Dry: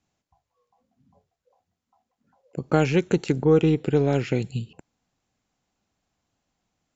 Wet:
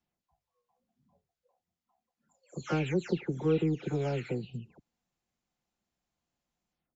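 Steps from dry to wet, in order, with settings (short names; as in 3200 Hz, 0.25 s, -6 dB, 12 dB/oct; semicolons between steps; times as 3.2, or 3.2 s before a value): spectral delay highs early, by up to 0.263 s; gain -8.5 dB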